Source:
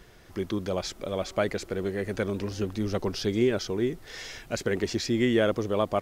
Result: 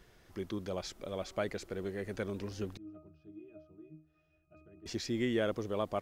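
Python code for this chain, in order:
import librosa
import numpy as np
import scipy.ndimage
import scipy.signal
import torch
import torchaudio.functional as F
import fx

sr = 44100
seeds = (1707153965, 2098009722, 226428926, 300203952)

y = fx.octave_resonator(x, sr, note='D#', decay_s=0.38, at=(2.77, 4.86))
y = F.gain(torch.from_numpy(y), -8.5).numpy()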